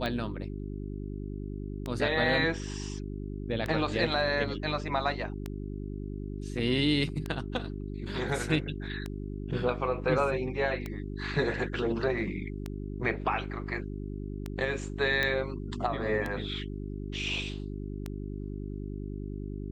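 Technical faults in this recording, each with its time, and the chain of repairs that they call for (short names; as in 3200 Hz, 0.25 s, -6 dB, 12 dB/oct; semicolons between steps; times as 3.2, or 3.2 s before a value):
hum 50 Hz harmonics 8 -37 dBFS
tick 33 1/3 rpm -20 dBFS
15.23 pop -15 dBFS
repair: de-click; de-hum 50 Hz, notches 8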